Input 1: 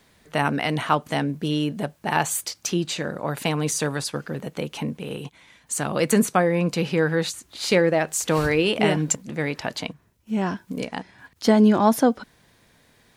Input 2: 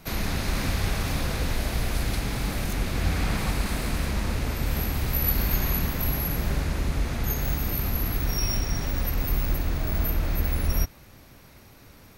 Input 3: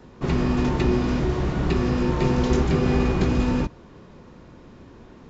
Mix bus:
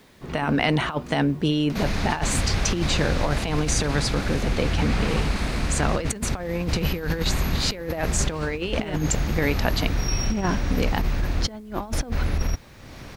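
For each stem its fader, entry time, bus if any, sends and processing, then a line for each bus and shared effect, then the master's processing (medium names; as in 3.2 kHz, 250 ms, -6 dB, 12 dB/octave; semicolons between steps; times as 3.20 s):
+1.5 dB, 0.00 s, no send, none
0.0 dB, 1.70 s, no send, upward compressor, threshold -31 dBFS
-12.5 dB, 0.00 s, no send, auto duck -11 dB, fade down 1.90 s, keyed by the first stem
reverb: none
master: low-pass 6.6 kHz 12 dB/octave; compressor with a negative ratio -22 dBFS, ratio -0.5; word length cut 10-bit, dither none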